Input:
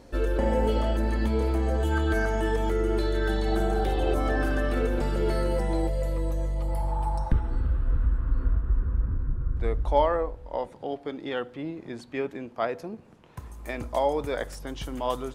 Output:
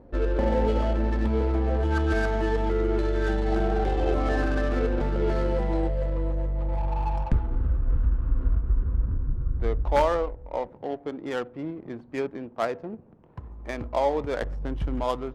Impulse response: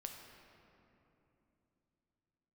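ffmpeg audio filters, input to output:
-filter_complex "[0:a]asettb=1/sr,asplit=3[a][b][c];[a]atrim=end=14.424[d];[b]atrim=start=14.42:end=15.04,asetpts=PTS-STARTPTS,afade=t=in:d=0.004:c=qsin,afade=t=out:st=0.616:d=0.004:c=qsin,lowshelf=f=190:g=9[e];[c]atrim=start=15.036[f];[d][e]acrossfade=d=0.004:c1=hsin:c2=qsin[g];[g][f]acrossfade=d=0.004:c1=qsin:c2=hsin,adynamicsmooth=sensitivity=5:basefreq=790,aeval=exprs='0.211*(abs(mod(val(0)/0.211+3,4)-2)-1)':c=same,volume=1dB"

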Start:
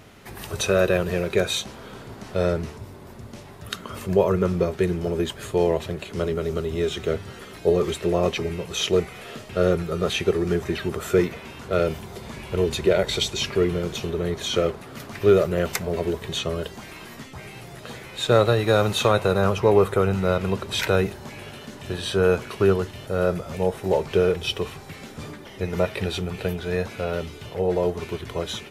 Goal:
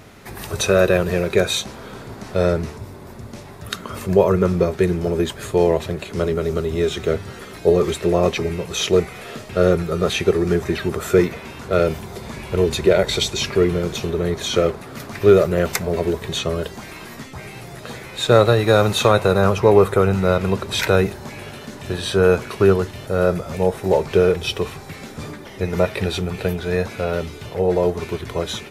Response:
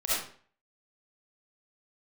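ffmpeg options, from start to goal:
-af "equalizer=f=3k:t=o:w=0.25:g=-4.5,volume=4.5dB"

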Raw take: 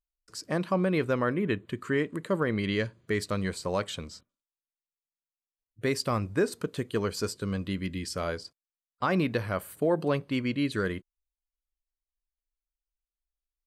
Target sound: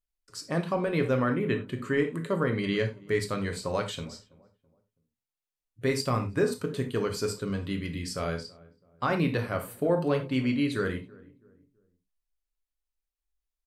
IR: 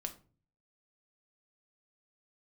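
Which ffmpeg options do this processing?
-filter_complex "[0:a]asplit=2[a][b];[b]adelay=329,lowpass=f=1k:p=1,volume=-21.5dB,asplit=2[c][d];[d]adelay=329,lowpass=f=1k:p=1,volume=0.39,asplit=2[e][f];[f]adelay=329,lowpass=f=1k:p=1,volume=0.39[g];[a][c][e][g]amix=inputs=4:normalize=0[h];[1:a]atrim=start_sample=2205,atrim=end_sample=3528,asetrate=32634,aresample=44100[i];[h][i]afir=irnorm=-1:irlink=0"

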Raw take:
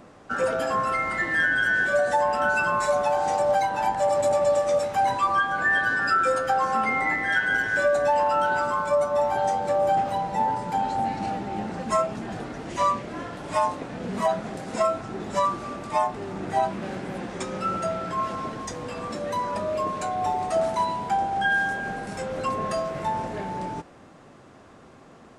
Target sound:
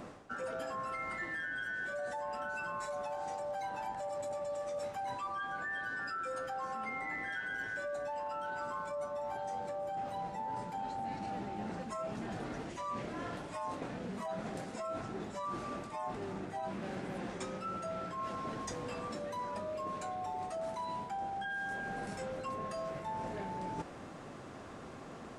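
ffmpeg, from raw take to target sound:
-af "alimiter=limit=-18dB:level=0:latency=1:release=91,areverse,acompressor=threshold=-39dB:ratio=8,areverse,volume=1.5dB"

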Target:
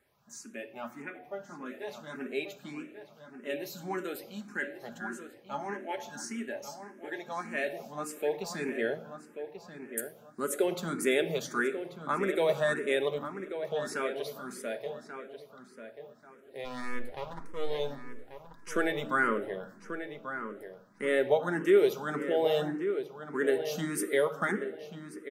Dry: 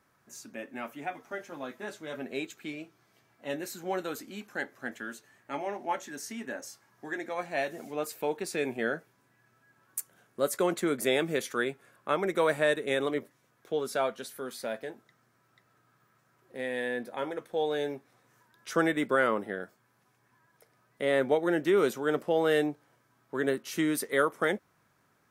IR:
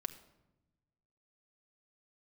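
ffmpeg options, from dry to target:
-filter_complex "[0:a]asettb=1/sr,asplit=3[a][b][c];[a]atrim=end=1.024[d];[b]atrim=start=1.02:end=1.66,asetpts=PTS-STARTPTS,afade=t=in:d=0.004:c=qsin,afade=t=out:st=0.636:d=0.004:c=qsin,equalizer=f=8k:t=o:w=2.4:g=-9.5[e];[c]atrim=start=1.656[f];[d][e]acrossfade=d=0.004:c1=hsin:c2=qsin[g];[g][f]acrossfade=d=0.004:c1=qsin:c2=hsin,asplit=3[h][i][j];[h]afade=t=out:st=16.64:d=0.02[k];[i]aeval=exprs='max(val(0),0)':c=same,afade=t=in:st=16.64:d=0.02,afade=t=out:st=17.78:d=0.02[l];[j]afade=t=in:st=17.78:d=0.02[m];[k][l][m]amix=inputs=3:normalize=0,asplit=2[n][o];[o]adelay=1137,lowpass=f=2.5k:p=1,volume=-9dB,asplit=2[p][q];[q]adelay=1137,lowpass=f=2.5k:p=1,volume=0.28,asplit=2[r][s];[s]adelay=1137,lowpass=f=2.5k:p=1,volume=0.28[t];[n][p][r][t]amix=inputs=4:normalize=0[u];[1:a]atrim=start_sample=2205[v];[u][v]afir=irnorm=-1:irlink=0,asplit=2[w][x];[x]afreqshift=1.7[y];[w][y]amix=inputs=2:normalize=1,volume=2.5dB"

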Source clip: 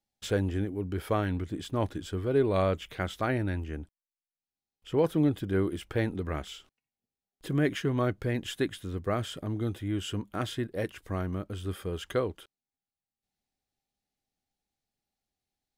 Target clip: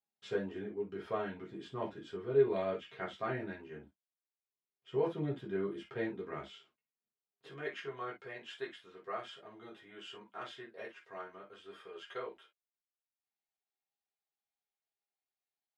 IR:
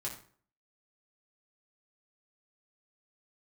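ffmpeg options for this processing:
-filter_complex "[0:a]asetnsamples=n=441:p=0,asendcmd='7.47 highpass f 600',highpass=230,lowpass=3.9k[a];[1:a]atrim=start_sample=2205,atrim=end_sample=3528,asetrate=48510,aresample=44100[b];[a][b]afir=irnorm=-1:irlink=0,volume=-6.5dB"

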